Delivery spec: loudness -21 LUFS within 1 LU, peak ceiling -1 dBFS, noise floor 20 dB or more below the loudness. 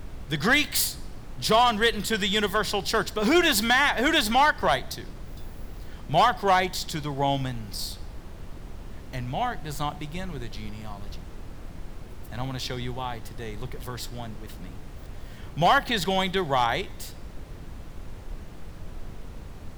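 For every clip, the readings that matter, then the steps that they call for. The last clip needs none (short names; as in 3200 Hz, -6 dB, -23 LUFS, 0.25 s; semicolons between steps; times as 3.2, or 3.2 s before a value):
clipped 0.3%; flat tops at -13.0 dBFS; noise floor -41 dBFS; noise floor target -45 dBFS; loudness -24.5 LUFS; peak -13.0 dBFS; loudness target -21.0 LUFS
-> clip repair -13 dBFS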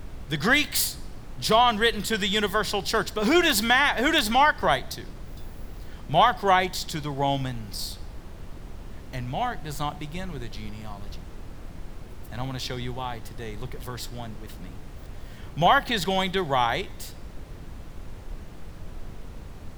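clipped 0.0%; noise floor -41 dBFS; noise floor target -44 dBFS
-> noise print and reduce 6 dB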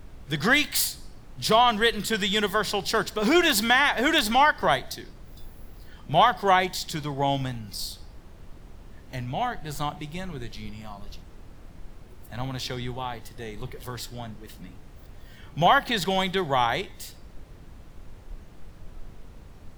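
noise floor -47 dBFS; loudness -24.0 LUFS; peak -4.5 dBFS; loudness target -21.0 LUFS
-> gain +3 dB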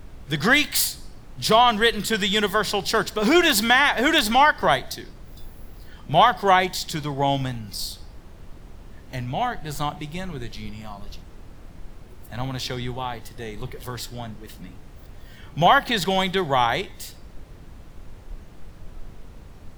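loudness -21.0 LUFS; peak -1.5 dBFS; noise floor -44 dBFS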